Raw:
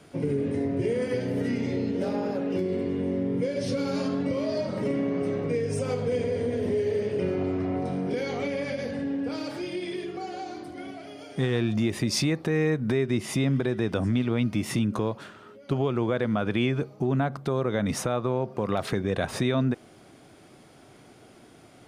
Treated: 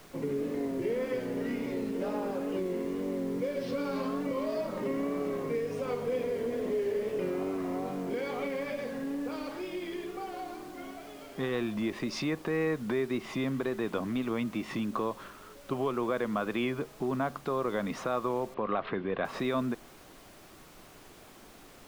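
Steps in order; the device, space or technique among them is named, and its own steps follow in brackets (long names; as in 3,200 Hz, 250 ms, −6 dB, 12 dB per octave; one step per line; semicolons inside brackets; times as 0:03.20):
horn gramophone (band-pass filter 200–3,600 Hz; parametric band 1,100 Hz +8 dB 0.34 octaves; tape wow and flutter; pink noise bed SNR 21 dB)
0:18.54–0:19.25: inverse Chebyshev low-pass filter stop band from 9,800 Hz, stop band 60 dB
parametric band 63 Hz −5 dB 1.5 octaves
level −4 dB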